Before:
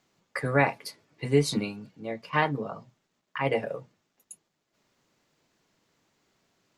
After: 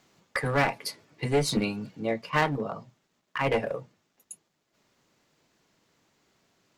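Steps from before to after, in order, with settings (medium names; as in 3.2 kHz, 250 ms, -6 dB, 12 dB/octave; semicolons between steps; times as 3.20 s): one-sided clip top -26 dBFS; gain riding within 5 dB 0.5 s; trim +3.5 dB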